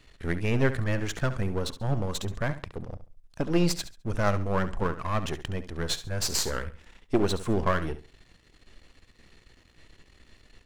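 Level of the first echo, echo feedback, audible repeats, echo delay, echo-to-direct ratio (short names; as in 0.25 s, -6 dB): -13.0 dB, 26%, 2, 69 ms, -12.5 dB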